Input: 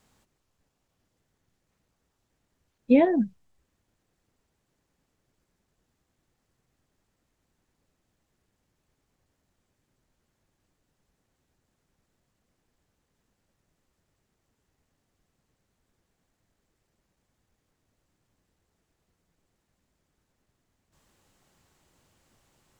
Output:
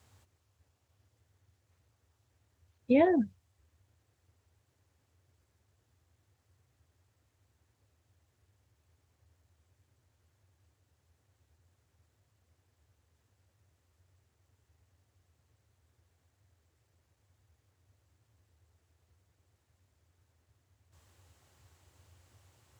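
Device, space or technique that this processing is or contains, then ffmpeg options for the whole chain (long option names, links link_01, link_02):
car stereo with a boomy subwoofer: -af "lowshelf=frequency=120:width_type=q:width=3:gain=13,alimiter=limit=-15.5dB:level=0:latency=1:release=30,highpass=frequency=98:width=0.5412,highpass=frequency=98:width=1.3066"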